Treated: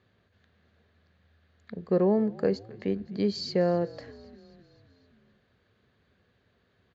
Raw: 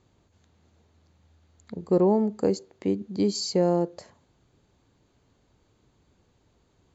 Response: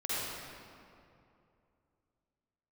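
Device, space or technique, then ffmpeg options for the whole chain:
frequency-shifting delay pedal into a guitar cabinet: -filter_complex "[0:a]asplit=7[a][b][c][d][e][f][g];[b]adelay=258,afreqshift=-52,volume=-21dB[h];[c]adelay=516,afreqshift=-104,volume=-24.7dB[i];[d]adelay=774,afreqshift=-156,volume=-28.5dB[j];[e]adelay=1032,afreqshift=-208,volume=-32.2dB[k];[f]adelay=1290,afreqshift=-260,volume=-36dB[l];[g]adelay=1548,afreqshift=-312,volume=-39.7dB[m];[a][h][i][j][k][l][m]amix=inputs=7:normalize=0,highpass=90,equalizer=f=140:t=q:w=4:g=-6,equalizer=f=310:t=q:w=4:g=-10,equalizer=f=890:t=q:w=4:g=-9,equalizer=f=1.7k:t=q:w=4:g=9,lowpass=f=4.4k:w=0.5412,lowpass=f=4.4k:w=1.3066"

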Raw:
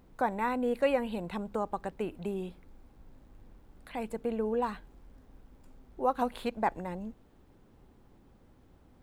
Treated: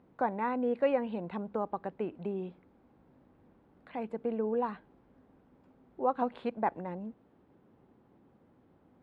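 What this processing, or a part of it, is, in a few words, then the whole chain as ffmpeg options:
phone in a pocket: -af "highpass=140,lowpass=3.7k,highshelf=f=2.3k:g=-10"

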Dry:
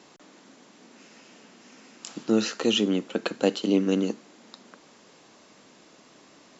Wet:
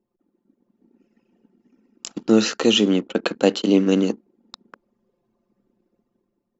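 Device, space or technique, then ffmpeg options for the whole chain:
voice memo with heavy noise removal: -af "anlmdn=0.251,dynaudnorm=f=120:g=11:m=8dB"

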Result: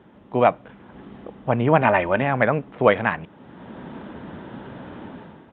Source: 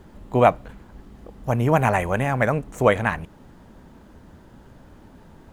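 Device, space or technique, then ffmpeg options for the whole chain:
Bluetooth headset: -filter_complex "[0:a]asettb=1/sr,asplit=3[a][b][c];[a]atrim=end=1.814[d];[b]atrim=start=1.81:end=2.22,asetpts=PTS-STARTPTS,afade=t=in:d=0.004:c=qsin,afade=t=out:st=0.406:d=0.004:c=qsin,aecho=1:1:3.3:0.47,atrim=end_sample=18081[e];[c]atrim=start=2.216[f];[d][e]acrossfade=d=0.004:c1=hsin:c2=qsin[g];[g][f]acrossfade=d=0.004:c1=qsin:c2=hsin,highpass=150,dynaudnorm=f=130:g=7:m=14dB,aresample=8000,aresample=44100,volume=-1dB" -ar 16000 -c:a sbc -b:a 64k

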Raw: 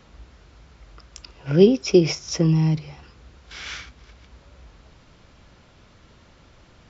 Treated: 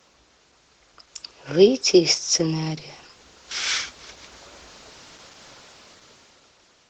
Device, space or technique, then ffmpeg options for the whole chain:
video call: -af "highpass=f=140:p=1,bass=f=250:g=-11,treble=f=4k:g=10,dynaudnorm=f=210:g=11:m=12.5dB,volume=-2dB" -ar 48000 -c:a libopus -b:a 16k

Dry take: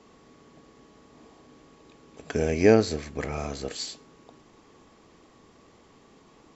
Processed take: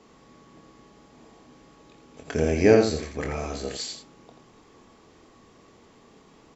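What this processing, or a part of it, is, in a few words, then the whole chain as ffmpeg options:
slapback doubling: -filter_complex "[0:a]asplit=3[a][b][c];[b]adelay=25,volume=-7dB[d];[c]adelay=85,volume=-6.5dB[e];[a][d][e]amix=inputs=3:normalize=0"

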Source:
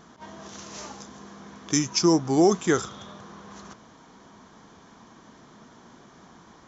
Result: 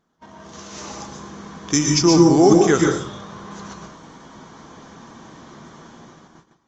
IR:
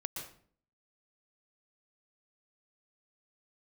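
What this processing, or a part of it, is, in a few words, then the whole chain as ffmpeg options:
speakerphone in a meeting room: -filter_complex "[1:a]atrim=start_sample=2205[a];[0:a][a]afir=irnorm=-1:irlink=0,dynaudnorm=f=250:g=7:m=7dB,agate=range=-17dB:threshold=-47dB:ratio=16:detection=peak,volume=1.5dB" -ar 48000 -c:a libopus -b:a 32k

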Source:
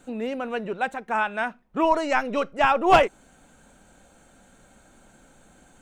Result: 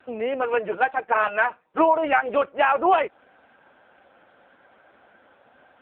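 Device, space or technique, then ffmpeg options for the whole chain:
voicemail: -filter_complex "[0:a]asettb=1/sr,asplit=3[a][b][c];[a]atrim=end=0.414[d];[b]atrim=start=0.41:end=2.29,asetpts=PTS-STARTPTS,afade=t=in:d=0.004:c=qsin,afade=t=out:st=1.876:d=0.004:c=qsin,aecho=1:1:6.4:0.76,atrim=end_sample=82908[e];[c]atrim=start=2.286[f];[d][e]acrossfade=d=0.004:c1=hsin:c2=qsin[g];[g][f]acrossfade=d=0.004:c1=qsin:c2=hsin,highpass=440,lowpass=3k,acompressor=threshold=-21dB:ratio=12,volume=7.5dB" -ar 8000 -c:a libopencore_amrnb -b:a 5900

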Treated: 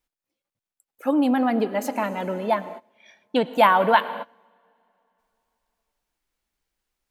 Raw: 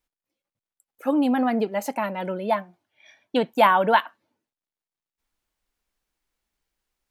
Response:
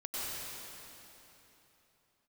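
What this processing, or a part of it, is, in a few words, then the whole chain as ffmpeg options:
keyed gated reverb: -filter_complex "[0:a]asplit=3[a][b][c];[1:a]atrim=start_sample=2205[d];[b][d]afir=irnorm=-1:irlink=0[e];[c]apad=whole_len=313472[f];[e][f]sidechaingate=range=-23dB:threshold=-47dB:ratio=16:detection=peak,volume=-15.5dB[g];[a][g]amix=inputs=2:normalize=0"

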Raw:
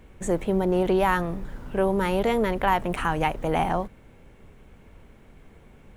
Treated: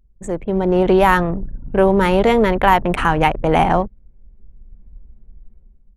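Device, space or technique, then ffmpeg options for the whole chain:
voice memo with heavy noise removal: -af "anlmdn=10,dynaudnorm=f=180:g=7:m=15dB"

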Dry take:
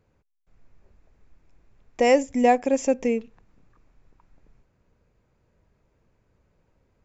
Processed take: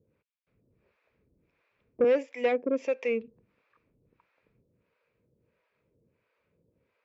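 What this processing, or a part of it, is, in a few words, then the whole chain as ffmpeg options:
guitar amplifier with harmonic tremolo: -filter_complex "[0:a]asettb=1/sr,asplit=3[a][b][c];[a]atrim=end=2.044[d];[b]atrim=start=2.04:end=2.96,asetpts=PTS-STARTPTS,afade=t=in:d=0.004:c=qsin,afade=t=out:st=0.916:d=0.004:c=qsin,highpass=250[e];[c]atrim=start=2.956[f];[d][e]acrossfade=d=0.004:c1=hsin:c2=qsin[g];[g][f]acrossfade=d=0.004:c1=qsin:c2=hsin,acrossover=split=560[h][i];[h]aeval=exprs='val(0)*(1-1/2+1/2*cos(2*PI*1.5*n/s))':c=same[j];[i]aeval=exprs='val(0)*(1-1/2-1/2*cos(2*PI*1.5*n/s))':c=same[k];[j][k]amix=inputs=2:normalize=0,asoftclip=type=tanh:threshold=-20.5dB,highpass=110,equalizer=f=480:t=q:w=4:g=6,equalizer=f=770:t=q:w=4:g=-8,equalizer=f=2.4k:t=q:w=4:g=7,lowpass=f=4.3k:w=0.5412,lowpass=f=4.3k:w=1.3066"

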